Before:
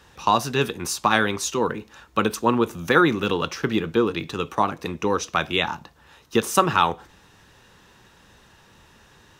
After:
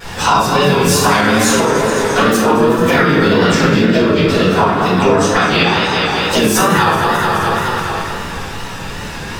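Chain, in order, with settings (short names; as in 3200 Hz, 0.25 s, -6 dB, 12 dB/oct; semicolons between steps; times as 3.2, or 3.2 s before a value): regenerating reverse delay 0.107 s, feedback 76%, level -10 dB; compressor 4:1, threshold -37 dBFS, peak gain reduction 21.5 dB; harmoniser +5 st -5 dB; shoebox room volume 190 m³, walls mixed, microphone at 4.7 m; wow and flutter 64 cents; maximiser +12 dB; gain -1 dB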